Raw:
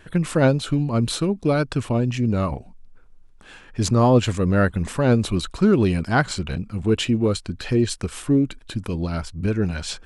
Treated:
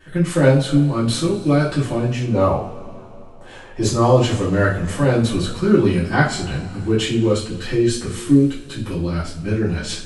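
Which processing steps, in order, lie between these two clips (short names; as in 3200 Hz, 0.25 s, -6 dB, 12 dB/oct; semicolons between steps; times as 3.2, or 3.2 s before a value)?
2.34–3.86 band shelf 590 Hz +9.5 dB; two-slope reverb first 0.37 s, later 3.1 s, from -22 dB, DRR -10 dB; gain -7.5 dB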